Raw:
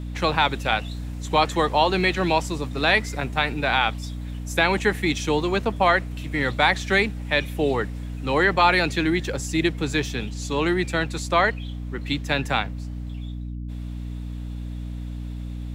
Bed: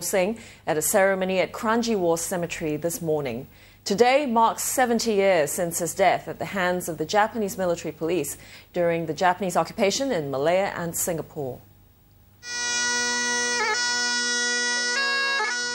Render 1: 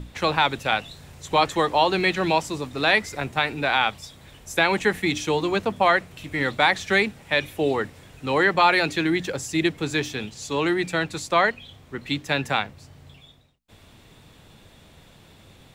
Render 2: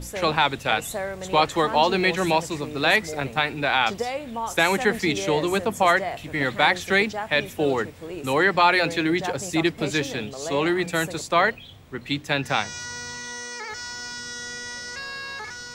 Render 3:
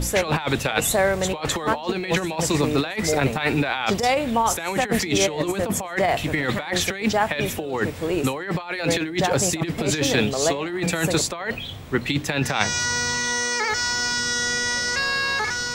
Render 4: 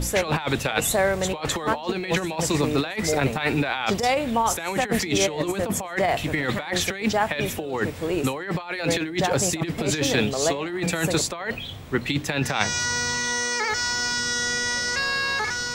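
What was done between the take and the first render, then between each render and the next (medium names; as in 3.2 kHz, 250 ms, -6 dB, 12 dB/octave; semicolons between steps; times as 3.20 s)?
hum notches 60/120/180/240/300 Hz
add bed -10.5 dB
in parallel at +2 dB: peak limiter -16.5 dBFS, peak gain reduction 10 dB; on the sum: compressor with a negative ratio -21 dBFS, ratio -0.5
trim -1.5 dB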